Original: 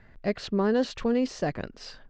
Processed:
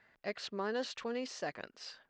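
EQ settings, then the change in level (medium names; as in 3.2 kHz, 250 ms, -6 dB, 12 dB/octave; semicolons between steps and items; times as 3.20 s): high-pass 1 kHz 6 dB/octave; -4.0 dB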